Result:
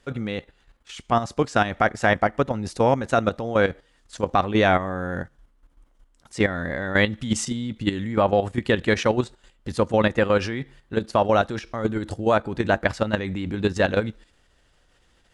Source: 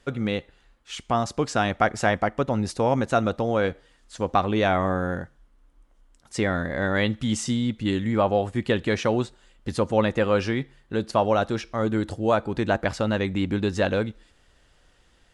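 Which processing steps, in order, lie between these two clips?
dynamic bell 1.8 kHz, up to +3 dB, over -40 dBFS, Q 2.7; level held to a coarse grid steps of 11 dB; trim +5 dB

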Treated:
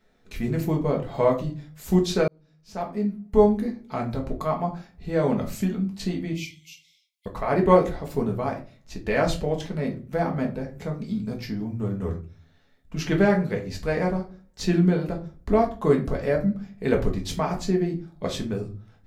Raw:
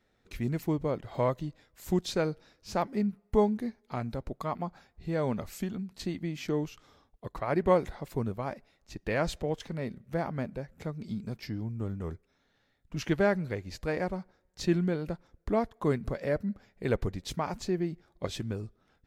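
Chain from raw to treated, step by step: 6.33–7.26 s: brick-wall FIR high-pass 2 kHz; simulated room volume 180 m³, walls furnished, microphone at 1.5 m; 2.28–3.79 s: fade in; trim +3.5 dB

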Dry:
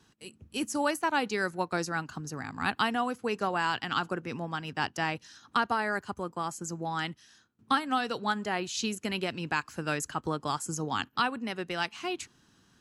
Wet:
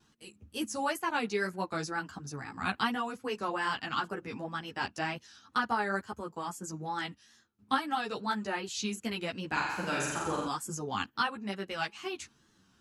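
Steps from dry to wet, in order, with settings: wow and flutter 92 cents; 9.47–10.47 s: flutter echo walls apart 7.5 m, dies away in 1.2 s; three-phase chorus

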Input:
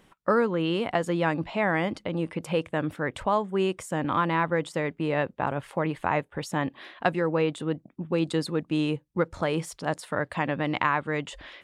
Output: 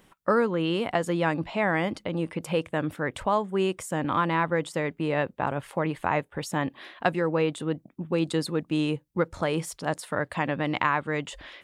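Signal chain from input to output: treble shelf 9.6 kHz +7.5 dB

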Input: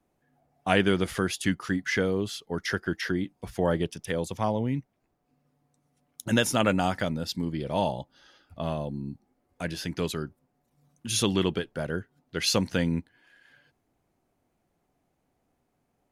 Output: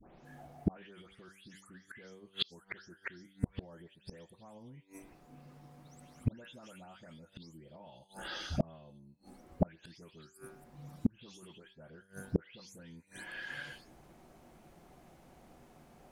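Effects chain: delay that grows with frequency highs late, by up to 249 ms; treble shelf 9.6 kHz -6 dB; peak limiter -23 dBFS, peak gain reduction 11.5 dB; de-hum 96.57 Hz, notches 27; inverted gate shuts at -33 dBFS, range -38 dB; trim +16.5 dB

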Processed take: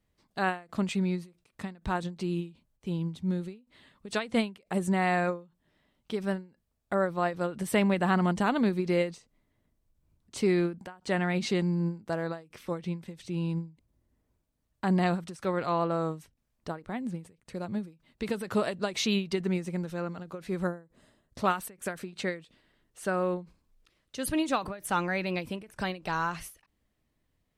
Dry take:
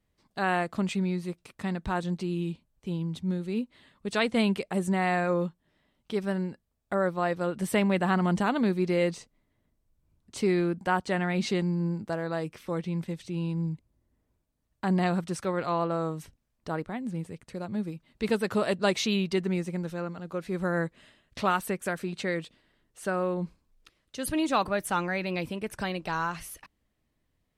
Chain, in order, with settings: 20.67–21.44 s: peaking EQ 2.6 kHz -14.5 dB 1.5 oct; endings held to a fixed fall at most 180 dB/s

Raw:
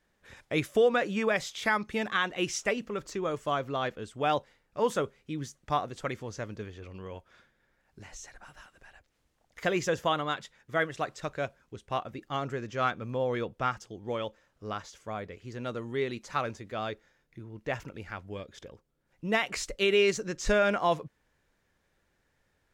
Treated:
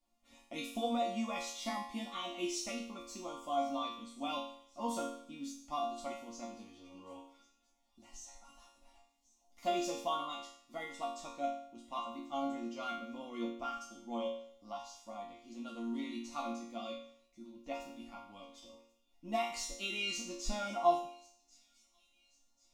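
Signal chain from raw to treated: static phaser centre 440 Hz, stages 6; chord resonator A#3 minor, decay 0.61 s; feedback echo behind a high-pass 1090 ms, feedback 43%, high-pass 4.1 kHz, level -20 dB; trim +17.5 dB

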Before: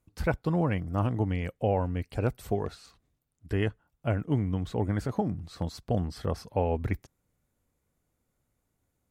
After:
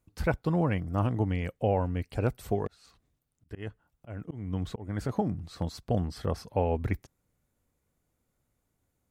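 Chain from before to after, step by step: 2.67–5.01 s: slow attack 305 ms

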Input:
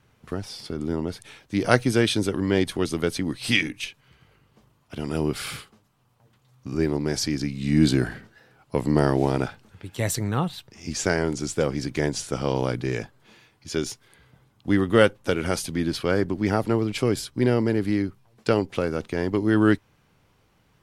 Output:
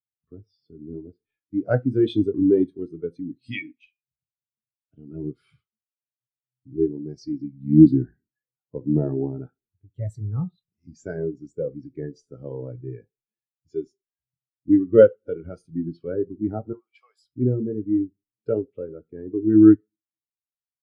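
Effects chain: 16.73–17.21 s: high-pass 780 Hz 24 dB/octave; in parallel at 0 dB: compression, threshold -37 dBFS, peak gain reduction 23.5 dB; 2.03–2.69 s: on the sum: waveshaping leveller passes 1; reverberation, pre-delay 3 ms, DRR 8 dB; spectral contrast expander 2.5:1; trim -1 dB

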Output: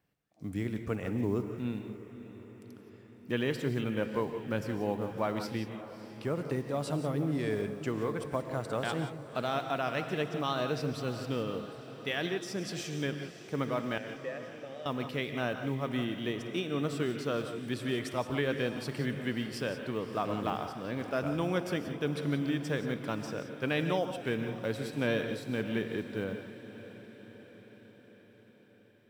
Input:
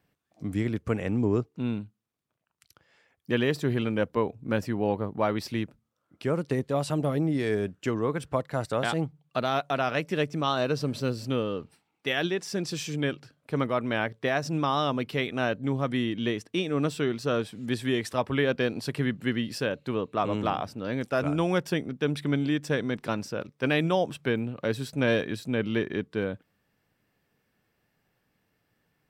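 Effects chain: block-companded coder 7-bit; 13.98–14.86 s: vowel filter e; on a send: echo that smears into a reverb 597 ms, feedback 61%, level -14 dB; on the sum: gated-style reverb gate 200 ms rising, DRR 8 dB; trim -6 dB

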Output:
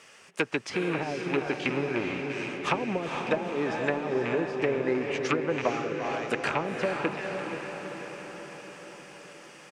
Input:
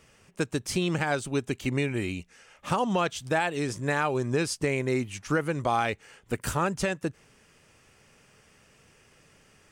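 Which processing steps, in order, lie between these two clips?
rattle on loud lows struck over -30 dBFS, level -19 dBFS; in parallel at -2 dB: peak limiter -21 dBFS, peak gain reduction 7.5 dB; on the sum: frequency weighting A; speakerphone echo 340 ms, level -14 dB; low-pass that closes with the level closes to 330 Hz, closed at -20 dBFS; on a send: echo that smears into a reverb 466 ms, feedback 63%, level -5 dB; on the sum: trim +2 dB

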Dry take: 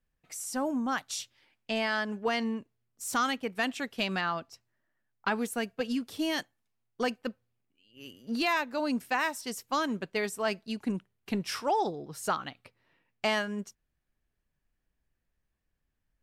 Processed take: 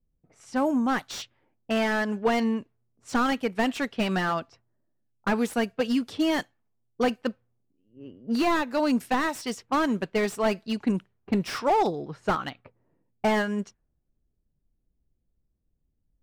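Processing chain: level-controlled noise filter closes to 390 Hz, open at -29.5 dBFS; slew-rate limiter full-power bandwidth 42 Hz; trim +6.5 dB

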